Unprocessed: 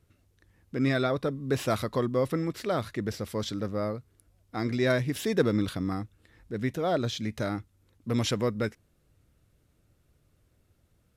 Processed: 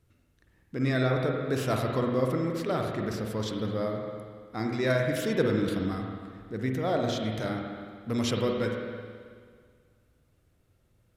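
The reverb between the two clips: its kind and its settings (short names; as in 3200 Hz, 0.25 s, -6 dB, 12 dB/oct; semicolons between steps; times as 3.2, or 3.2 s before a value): spring tank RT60 1.9 s, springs 46/54 ms, chirp 65 ms, DRR 1 dB; gain -2 dB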